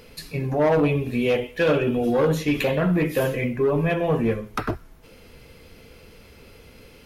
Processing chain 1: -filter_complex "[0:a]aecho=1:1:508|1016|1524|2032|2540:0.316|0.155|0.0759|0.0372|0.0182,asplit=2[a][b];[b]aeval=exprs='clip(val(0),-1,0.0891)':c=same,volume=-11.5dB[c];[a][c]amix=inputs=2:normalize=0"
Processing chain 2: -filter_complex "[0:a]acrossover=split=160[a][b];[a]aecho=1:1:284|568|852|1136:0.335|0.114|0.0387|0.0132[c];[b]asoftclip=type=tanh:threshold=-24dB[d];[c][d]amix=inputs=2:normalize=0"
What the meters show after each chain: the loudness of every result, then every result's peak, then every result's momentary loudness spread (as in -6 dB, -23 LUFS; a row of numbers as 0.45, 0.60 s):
-20.5, -27.0 LUFS; -8.0, -17.0 dBFS; 15, 8 LU